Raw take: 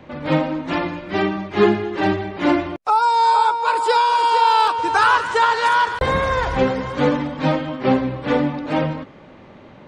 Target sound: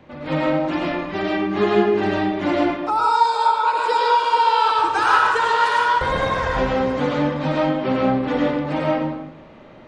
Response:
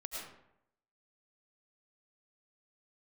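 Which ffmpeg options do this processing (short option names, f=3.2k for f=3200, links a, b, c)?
-filter_complex "[0:a]asettb=1/sr,asplit=3[a][b][c];[a]atrim=end=3.374[d];[b]atrim=start=3.37:end=4.68,asetpts=PTS-STARTPTS,afade=t=in:d=0.004:c=qsin,afade=t=out:st=1.306:d=0.004:c=qsin,acrossover=split=7100[e][f];[f]acompressor=threshold=-56dB:ratio=4:attack=1:release=60[g];[e][g]amix=inputs=2:normalize=0[h];[c]atrim=start=4.676[i];[d][h]acrossfade=d=0.004:c1=hsin:c2=qsin[j];[j][i]acrossfade=d=0.004:c1=qsin:c2=hsin[k];[1:a]atrim=start_sample=2205[l];[k][l]afir=irnorm=-1:irlink=0"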